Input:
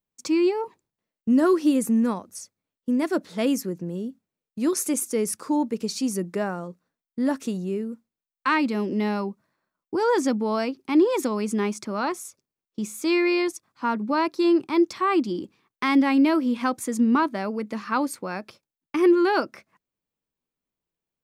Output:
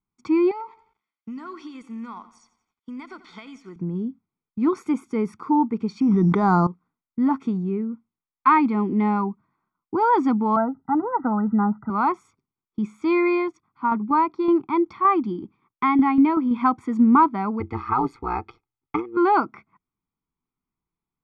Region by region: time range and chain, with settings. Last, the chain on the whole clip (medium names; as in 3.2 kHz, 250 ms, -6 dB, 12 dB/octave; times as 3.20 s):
0.51–3.76 s: frequency weighting ITU-R 468 + compression 10:1, threshold -34 dBFS + bit-crushed delay 88 ms, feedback 55%, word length 9-bit, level -15 dB
6.00–6.67 s: careless resampling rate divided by 8×, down filtered, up hold + treble shelf 4 kHz -5 dB + level flattener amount 100%
10.56–11.90 s: brick-wall FIR low-pass 2 kHz + comb 1.4 ms, depth 98%
13.35–16.51 s: Bessel low-pass 6.5 kHz + tremolo saw down 5.3 Hz, depth 50%
17.60–19.17 s: AM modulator 120 Hz, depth 80% + compressor with a negative ratio -28 dBFS, ratio -0.5 + comb 2.4 ms, depth 67%
whole clip: low-pass 1.7 kHz 12 dB/octave; dynamic bell 830 Hz, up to +5 dB, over -36 dBFS, Q 1.2; comb 0.9 ms, depth 97%